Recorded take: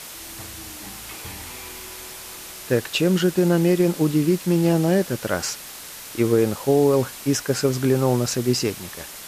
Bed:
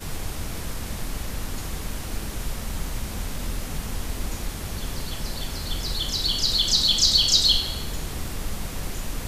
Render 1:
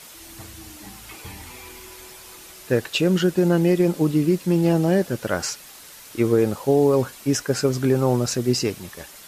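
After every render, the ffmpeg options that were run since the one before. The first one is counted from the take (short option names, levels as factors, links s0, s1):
-af "afftdn=nr=7:nf=-38"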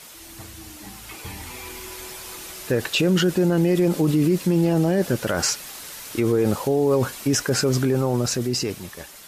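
-af "alimiter=limit=0.133:level=0:latency=1:release=23,dynaudnorm=f=280:g=11:m=2"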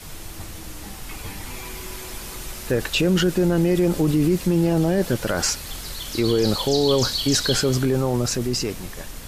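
-filter_complex "[1:a]volume=0.447[s0];[0:a][s0]amix=inputs=2:normalize=0"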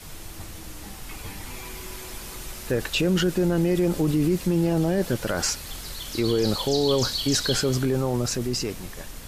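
-af "volume=0.708"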